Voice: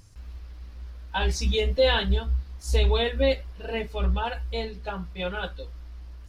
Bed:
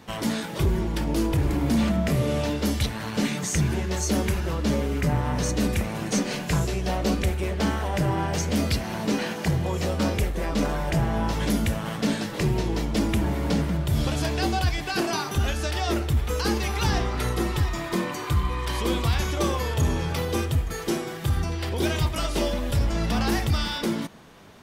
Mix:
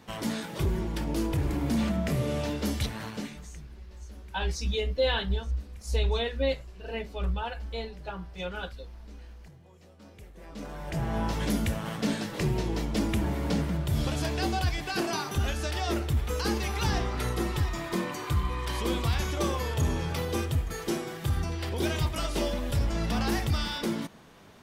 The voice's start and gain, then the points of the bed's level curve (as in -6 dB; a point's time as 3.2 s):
3.20 s, -5.0 dB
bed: 3.04 s -5 dB
3.68 s -29 dB
9.99 s -29 dB
11.16 s -4 dB